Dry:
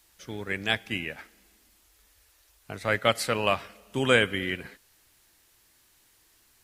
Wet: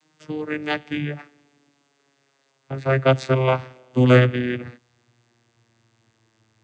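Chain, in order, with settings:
vocoder with a gliding carrier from D#3, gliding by −6 semitones
level +8.5 dB

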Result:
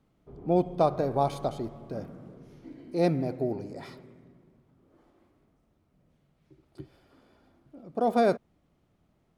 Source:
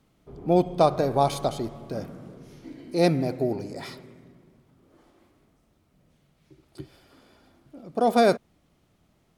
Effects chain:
high-shelf EQ 2,400 Hz −9 dB
level −3.5 dB

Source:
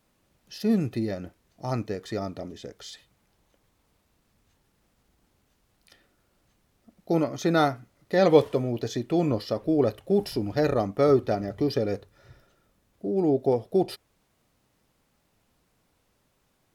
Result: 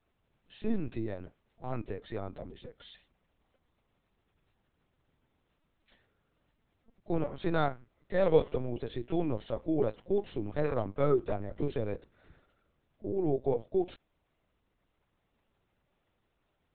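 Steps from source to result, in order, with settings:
linear-prediction vocoder at 8 kHz pitch kept
level −6.5 dB

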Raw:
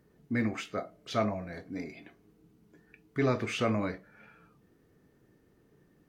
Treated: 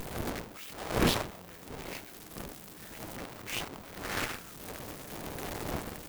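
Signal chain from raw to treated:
sign of each sample alone
wind on the microphone 370 Hz −42 dBFS
harmonic generator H 7 −17 dB, 8 −11 dB, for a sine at −17 dBFS
level +1.5 dB

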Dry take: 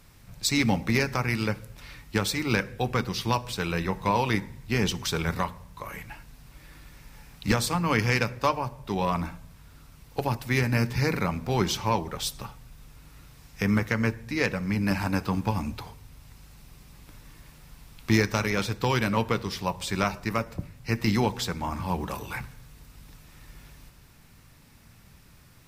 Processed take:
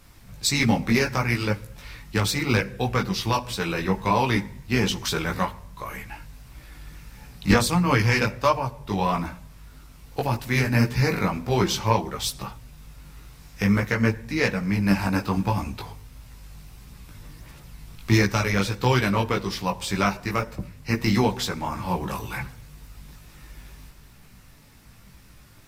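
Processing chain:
multi-voice chorus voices 4, 1.5 Hz, delay 18 ms, depth 3 ms
level +6 dB

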